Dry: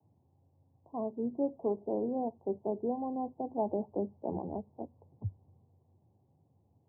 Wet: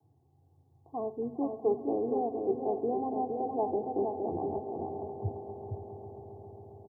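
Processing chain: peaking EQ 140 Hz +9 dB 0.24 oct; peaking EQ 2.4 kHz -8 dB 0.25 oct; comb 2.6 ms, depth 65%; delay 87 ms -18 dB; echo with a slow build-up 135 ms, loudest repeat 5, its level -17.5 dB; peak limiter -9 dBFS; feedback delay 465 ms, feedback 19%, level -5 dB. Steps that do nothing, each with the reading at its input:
peaking EQ 2.4 kHz: input has nothing above 1.1 kHz; peak limiter -9 dBFS: peak at its input -18.0 dBFS

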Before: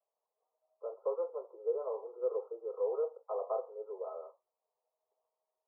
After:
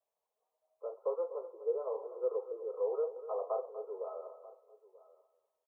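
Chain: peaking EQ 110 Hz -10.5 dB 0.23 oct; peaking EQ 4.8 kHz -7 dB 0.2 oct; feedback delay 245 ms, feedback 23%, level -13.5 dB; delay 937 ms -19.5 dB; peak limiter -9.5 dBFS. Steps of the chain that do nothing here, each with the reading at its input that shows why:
peaking EQ 110 Hz: input has nothing below 340 Hz; peaking EQ 4.8 kHz: input has nothing above 1.4 kHz; peak limiter -9.5 dBFS: peak at its input -23.5 dBFS

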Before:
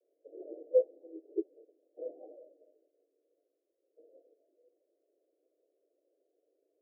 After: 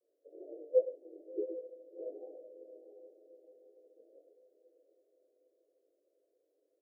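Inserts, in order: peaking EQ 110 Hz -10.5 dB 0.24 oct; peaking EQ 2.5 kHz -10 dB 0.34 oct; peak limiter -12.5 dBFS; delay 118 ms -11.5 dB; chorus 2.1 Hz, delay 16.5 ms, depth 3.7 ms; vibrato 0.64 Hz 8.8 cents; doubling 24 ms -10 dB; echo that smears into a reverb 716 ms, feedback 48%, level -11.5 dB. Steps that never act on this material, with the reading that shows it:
peaking EQ 110 Hz: input has nothing below 270 Hz; peaking EQ 2.5 kHz: input has nothing above 760 Hz; peak limiter -12.5 dBFS: peak at its input -15.5 dBFS

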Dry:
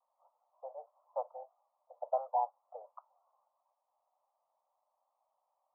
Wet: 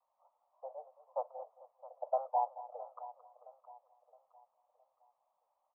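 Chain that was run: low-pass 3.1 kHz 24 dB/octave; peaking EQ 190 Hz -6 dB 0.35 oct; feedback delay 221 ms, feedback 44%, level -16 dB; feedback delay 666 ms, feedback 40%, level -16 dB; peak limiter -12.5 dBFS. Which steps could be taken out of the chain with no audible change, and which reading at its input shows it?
low-pass 3.1 kHz: input has nothing above 1.1 kHz; peaking EQ 190 Hz: input has nothing below 450 Hz; peak limiter -12.5 dBFS: peak at its input -20.5 dBFS

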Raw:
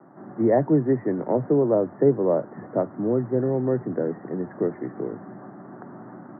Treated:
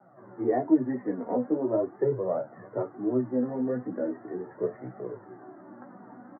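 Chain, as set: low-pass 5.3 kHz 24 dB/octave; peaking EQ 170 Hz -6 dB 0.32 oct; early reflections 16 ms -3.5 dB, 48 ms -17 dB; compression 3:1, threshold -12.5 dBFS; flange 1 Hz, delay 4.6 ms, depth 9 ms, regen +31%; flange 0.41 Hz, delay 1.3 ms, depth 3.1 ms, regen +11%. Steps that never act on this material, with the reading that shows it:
low-pass 5.3 kHz: input has nothing above 1.2 kHz

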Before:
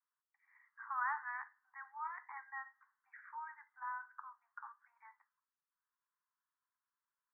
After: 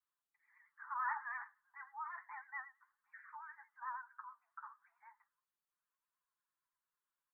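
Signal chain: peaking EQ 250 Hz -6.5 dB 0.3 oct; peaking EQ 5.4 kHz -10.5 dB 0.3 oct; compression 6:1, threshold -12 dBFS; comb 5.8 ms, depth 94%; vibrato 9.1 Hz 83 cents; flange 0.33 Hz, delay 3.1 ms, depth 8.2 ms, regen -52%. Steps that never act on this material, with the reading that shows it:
peaking EQ 250 Hz: input has nothing below 720 Hz; peaking EQ 5.4 kHz: input has nothing above 2.3 kHz; compression, threshold -12 dBFS: peak at its input -26.0 dBFS

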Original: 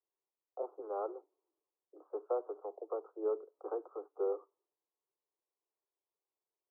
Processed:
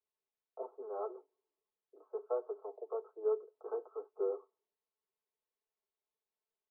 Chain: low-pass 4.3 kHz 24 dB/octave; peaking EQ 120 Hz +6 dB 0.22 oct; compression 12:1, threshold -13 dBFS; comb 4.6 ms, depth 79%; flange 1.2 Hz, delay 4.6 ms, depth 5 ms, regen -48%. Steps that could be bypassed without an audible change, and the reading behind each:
low-pass 4.3 kHz: input has nothing above 1.4 kHz; peaking EQ 120 Hz: input has nothing below 290 Hz; compression, threshold -13 dBFS: peak at its input -24.5 dBFS

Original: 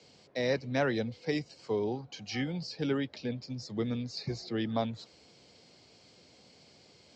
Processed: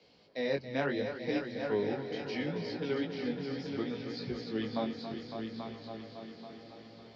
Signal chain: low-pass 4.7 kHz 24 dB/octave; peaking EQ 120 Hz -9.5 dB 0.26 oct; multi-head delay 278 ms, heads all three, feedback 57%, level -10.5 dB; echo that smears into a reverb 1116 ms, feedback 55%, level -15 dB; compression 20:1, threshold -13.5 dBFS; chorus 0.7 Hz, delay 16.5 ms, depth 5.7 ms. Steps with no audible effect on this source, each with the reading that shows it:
compression, threshold -13.5 dBFS: peak at its input -16.0 dBFS

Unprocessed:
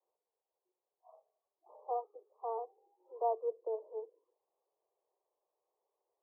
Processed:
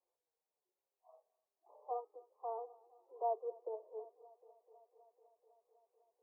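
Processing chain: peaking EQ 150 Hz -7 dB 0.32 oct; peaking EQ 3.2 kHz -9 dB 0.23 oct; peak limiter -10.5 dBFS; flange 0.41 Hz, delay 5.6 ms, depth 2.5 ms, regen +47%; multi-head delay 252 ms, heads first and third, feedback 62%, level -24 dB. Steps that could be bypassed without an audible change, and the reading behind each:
peaking EQ 150 Hz: input has nothing below 360 Hz; peaking EQ 3.2 kHz: input has nothing above 1.2 kHz; peak limiter -10.5 dBFS: peak at its input -22.0 dBFS

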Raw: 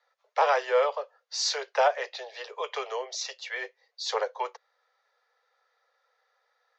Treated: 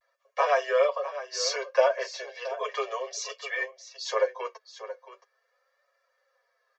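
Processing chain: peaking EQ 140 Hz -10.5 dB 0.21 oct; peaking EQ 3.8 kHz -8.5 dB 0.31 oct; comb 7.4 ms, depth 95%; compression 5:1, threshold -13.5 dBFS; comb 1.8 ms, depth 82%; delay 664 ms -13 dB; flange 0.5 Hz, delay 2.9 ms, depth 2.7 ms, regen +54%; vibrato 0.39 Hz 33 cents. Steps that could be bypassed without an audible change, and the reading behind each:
peaking EQ 140 Hz: input has nothing below 360 Hz

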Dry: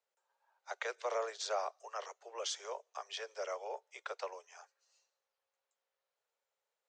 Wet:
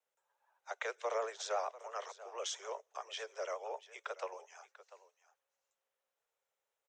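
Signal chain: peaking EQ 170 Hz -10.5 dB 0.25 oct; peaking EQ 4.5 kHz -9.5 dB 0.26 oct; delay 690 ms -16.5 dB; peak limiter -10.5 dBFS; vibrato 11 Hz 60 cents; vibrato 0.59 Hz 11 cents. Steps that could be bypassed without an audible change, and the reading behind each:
peaking EQ 170 Hz: input has nothing below 340 Hz; peak limiter -10.5 dBFS: peak at its input -25.0 dBFS

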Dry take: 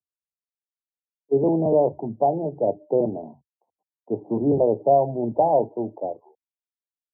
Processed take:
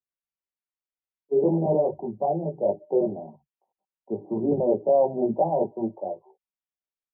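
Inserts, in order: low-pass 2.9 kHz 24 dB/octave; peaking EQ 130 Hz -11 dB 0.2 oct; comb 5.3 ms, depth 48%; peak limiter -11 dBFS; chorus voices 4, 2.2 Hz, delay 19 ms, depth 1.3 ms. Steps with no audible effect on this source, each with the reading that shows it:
low-pass 2.9 kHz: input has nothing above 1 kHz

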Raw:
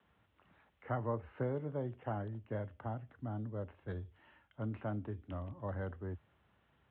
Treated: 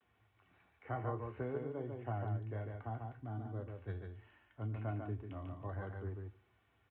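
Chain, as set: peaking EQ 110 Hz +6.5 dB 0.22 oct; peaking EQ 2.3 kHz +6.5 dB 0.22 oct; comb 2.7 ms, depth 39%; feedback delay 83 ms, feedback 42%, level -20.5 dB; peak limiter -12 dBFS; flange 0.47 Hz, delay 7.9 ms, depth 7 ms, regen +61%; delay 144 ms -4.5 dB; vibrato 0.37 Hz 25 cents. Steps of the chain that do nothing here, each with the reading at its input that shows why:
peak limiter -12 dBFS: peak at its input -22.5 dBFS

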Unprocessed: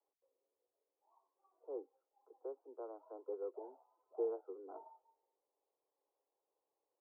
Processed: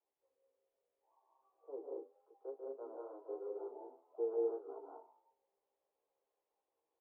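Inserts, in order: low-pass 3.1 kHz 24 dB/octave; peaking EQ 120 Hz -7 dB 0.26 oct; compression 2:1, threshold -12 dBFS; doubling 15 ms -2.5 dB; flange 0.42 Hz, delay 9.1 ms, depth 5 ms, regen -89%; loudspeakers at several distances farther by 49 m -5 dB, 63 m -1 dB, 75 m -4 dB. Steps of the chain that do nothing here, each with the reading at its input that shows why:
low-pass 3.1 kHz: input has nothing above 1.1 kHz; peaking EQ 120 Hz: input has nothing below 270 Hz; compression, threshold -12 dBFS: peak at its input -28.0 dBFS

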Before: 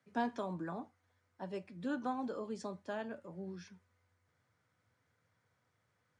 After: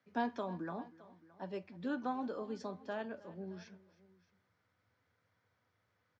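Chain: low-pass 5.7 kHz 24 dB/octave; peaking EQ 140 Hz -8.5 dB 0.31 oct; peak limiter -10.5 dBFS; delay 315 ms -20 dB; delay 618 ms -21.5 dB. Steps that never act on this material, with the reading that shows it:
peak limiter -10.5 dBFS: peak at its input -24.0 dBFS

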